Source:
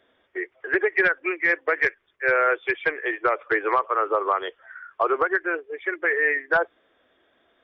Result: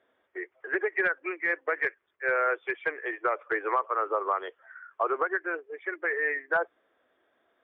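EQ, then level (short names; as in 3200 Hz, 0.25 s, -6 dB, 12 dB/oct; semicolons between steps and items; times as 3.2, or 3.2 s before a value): band-pass 1500 Hz, Q 0.54; tilt -3 dB/oct; -4.0 dB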